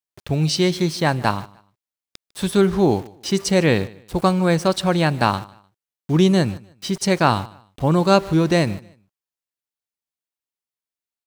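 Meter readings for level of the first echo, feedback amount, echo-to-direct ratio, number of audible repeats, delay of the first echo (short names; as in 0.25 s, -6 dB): -22.0 dB, 25%, -21.5 dB, 2, 0.151 s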